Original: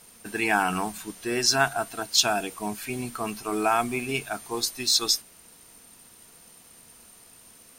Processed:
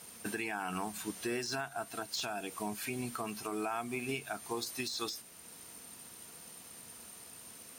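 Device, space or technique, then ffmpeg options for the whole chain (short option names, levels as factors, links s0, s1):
podcast mastering chain: -af "highpass=70,deesser=0.55,acompressor=threshold=0.0251:ratio=2.5,alimiter=level_in=1.19:limit=0.0631:level=0:latency=1:release=487,volume=0.841,volume=1.12" -ar 44100 -c:a libmp3lame -b:a 112k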